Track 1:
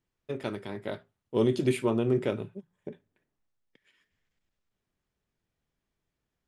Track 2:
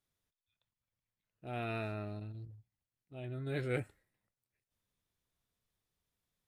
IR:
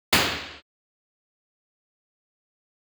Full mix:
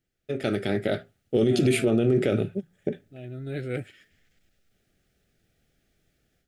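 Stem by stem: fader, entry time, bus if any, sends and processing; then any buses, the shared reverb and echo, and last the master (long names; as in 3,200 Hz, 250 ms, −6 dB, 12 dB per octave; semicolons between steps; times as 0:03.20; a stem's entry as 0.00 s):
+2.0 dB, 0.00 s, no send, no processing
−10.0 dB, 0.00 s, no send, high-pass filter 170 Hz; low-shelf EQ 250 Hz +11 dB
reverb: not used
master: automatic gain control gain up to 11.5 dB; Butterworth band-reject 1,000 Hz, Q 2.1; brickwall limiter −13 dBFS, peak gain reduction 10.5 dB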